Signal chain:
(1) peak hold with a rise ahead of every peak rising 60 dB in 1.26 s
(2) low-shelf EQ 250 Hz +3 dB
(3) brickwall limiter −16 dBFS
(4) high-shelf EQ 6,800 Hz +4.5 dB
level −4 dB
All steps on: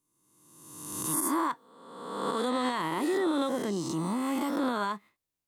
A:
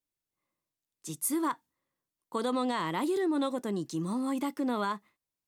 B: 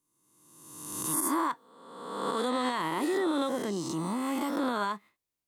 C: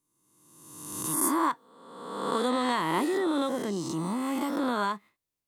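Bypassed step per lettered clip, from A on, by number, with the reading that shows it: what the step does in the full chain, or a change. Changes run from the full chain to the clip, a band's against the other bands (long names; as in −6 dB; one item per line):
1, 250 Hz band +2.5 dB
2, 125 Hz band −2.0 dB
3, change in crest factor +7.0 dB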